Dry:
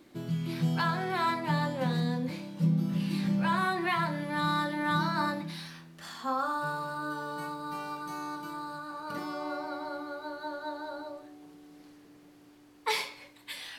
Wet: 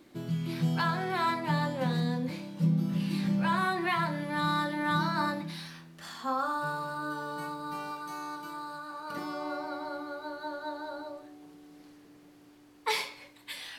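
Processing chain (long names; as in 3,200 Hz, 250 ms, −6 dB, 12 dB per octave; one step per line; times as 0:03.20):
0:07.91–0:09.17: low-shelf EQ 280 Hz −7.5 dB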